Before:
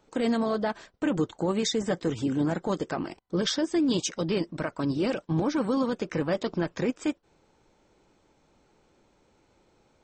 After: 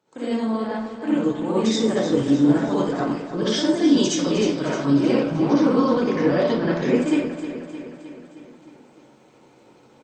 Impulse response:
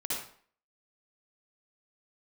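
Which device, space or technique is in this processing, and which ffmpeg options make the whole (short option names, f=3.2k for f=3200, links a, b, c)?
far-field microphone of a smart speaker: -filter_complex "[0:a]asettb=1/sr,asplit=3[a][b][c];[a]atrim=end=5.054[d];[b]atrim=start=5.05:end=6.81,asetpts=PTS-STARTPTS,afade=t=in:d=0.004:c=qsin,afade=t=out:st=1.756:d=0.004:c=qsin,lowpass=f=6.7k:w=0.5412,lowpass=f=6.7k:w=1.3066[e];[c]atrim=start=6.806[f];[d][e]acrossfade=d=0.004:c1=hsin:c2=qsin[g];[g][f]acrossfade=d=0.004:c1=qsin:c2=hsin,aecho=1:1:309|618|927|1236|1545|1854:0.299|0.167|0.0936|0.0524|0.0294|0.0164[h];[1:a]atrim=start_sample=2205[i];[h][i]afir=irnorm=-1:irlink=0,highpass=f=110:w=0.5412,highpass=f=110:w=1.3066,dynaudnorm=f=240:g=11:m=13dB,volume=-4.5dB" -ar 48000 -c:a libopus -b:a 48k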